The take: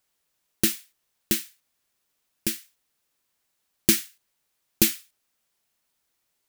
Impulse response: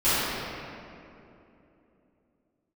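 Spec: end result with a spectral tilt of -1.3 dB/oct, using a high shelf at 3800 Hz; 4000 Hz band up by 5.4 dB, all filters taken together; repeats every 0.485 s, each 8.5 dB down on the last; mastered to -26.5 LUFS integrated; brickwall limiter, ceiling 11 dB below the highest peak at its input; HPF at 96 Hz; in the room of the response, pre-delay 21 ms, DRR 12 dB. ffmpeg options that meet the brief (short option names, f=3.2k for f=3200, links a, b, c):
-filter_complex "[0:a]highpass=96,highshelf=f=3.8k:g=-3.5,equalizer=f=4k:t=o:g=9,alimiter=limit=-13dB:level=0:latency=1,aecho=1:1:485|970|1455|1940:0.376|0.143|0.0543|0.0206,asplit=2[a][b];[1:a]atrim=start_sample=2205,adelay=21[c];[b][c]afir=irnorm=-1:irlink=0,volume=-30dB[d];[a][d]amix=inputs=2:normalize=0,volume=5.5dB"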